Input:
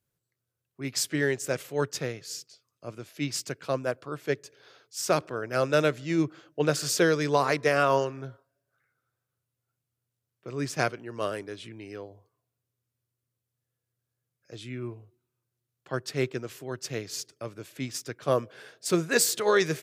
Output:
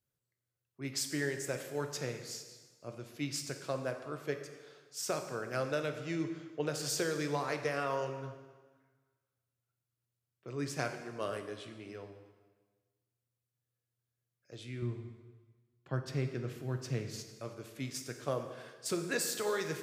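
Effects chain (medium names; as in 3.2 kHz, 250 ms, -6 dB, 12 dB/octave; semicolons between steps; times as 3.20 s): 14.82–17.32 s: tone controls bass +10 dB, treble -6 dB; compression, threshold -24 dBFS, peak gain reduction 7.5 dB; plate-style reverb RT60 1.4 s, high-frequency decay 0.9×, DRR 6 dB; trim -6.5 dB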